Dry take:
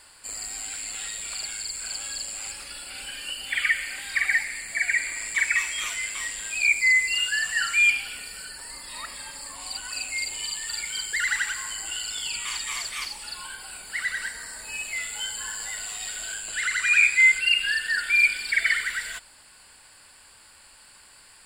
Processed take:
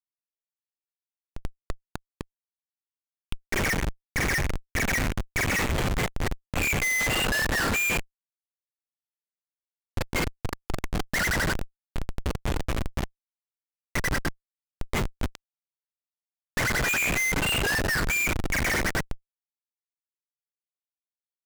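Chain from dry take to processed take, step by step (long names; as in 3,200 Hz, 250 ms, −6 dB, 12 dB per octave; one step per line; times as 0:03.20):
dynamic equaliser 1,500 Hz, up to +5 dB, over −35 dBFS, Q 0.89
comparator with hysteresis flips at −22 dBFS
highs frequency-modulated by the lows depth 0.2 ms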